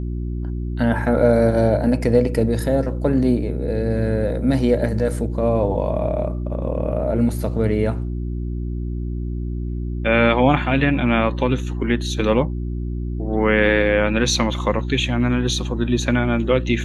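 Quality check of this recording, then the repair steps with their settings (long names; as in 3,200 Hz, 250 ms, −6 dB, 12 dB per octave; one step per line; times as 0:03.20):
mains hum 60 Hz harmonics 6 −25 dBFS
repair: hum removal 60 Hz, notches 6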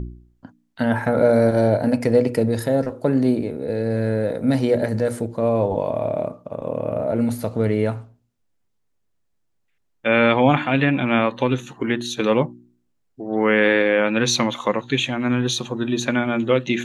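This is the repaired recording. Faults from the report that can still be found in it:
none of them is left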